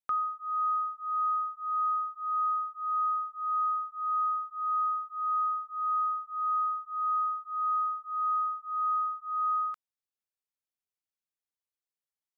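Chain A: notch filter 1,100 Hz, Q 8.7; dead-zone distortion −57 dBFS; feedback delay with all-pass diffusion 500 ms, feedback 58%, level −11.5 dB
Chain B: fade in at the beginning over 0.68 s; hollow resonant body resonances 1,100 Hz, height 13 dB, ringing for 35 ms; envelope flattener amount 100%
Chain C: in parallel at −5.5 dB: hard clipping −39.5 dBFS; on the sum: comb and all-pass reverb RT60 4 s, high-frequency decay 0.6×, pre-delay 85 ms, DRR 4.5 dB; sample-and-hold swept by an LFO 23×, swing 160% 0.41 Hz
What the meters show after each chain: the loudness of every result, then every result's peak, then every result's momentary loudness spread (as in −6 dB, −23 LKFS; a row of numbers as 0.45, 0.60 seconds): −31.0, −24.5, −29.5 LKFS; −24.0, −18.0, −23.5 dBFS; 6, 0, 5 LU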